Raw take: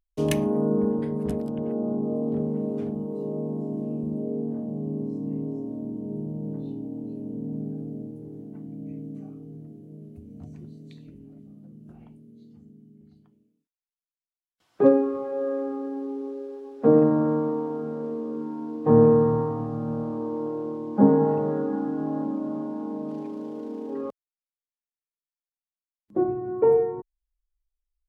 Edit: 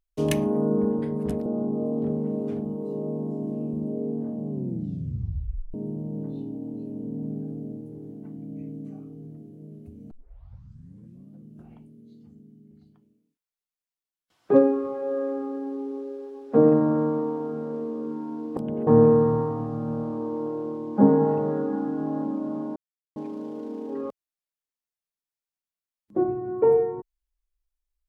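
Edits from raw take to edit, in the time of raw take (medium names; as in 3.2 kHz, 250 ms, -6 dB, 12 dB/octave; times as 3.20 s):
1.46–1.76 s: move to 18.87 s
4.80 s: tape stop 1.24 s
10.41 s: tape start 1.20 s
22.76–23.16 s: mute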